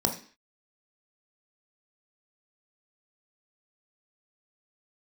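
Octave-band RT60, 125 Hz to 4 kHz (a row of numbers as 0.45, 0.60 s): 0.35 s, 0.45 s, 0.40 s, 0.45 s, 0.50 s, n/a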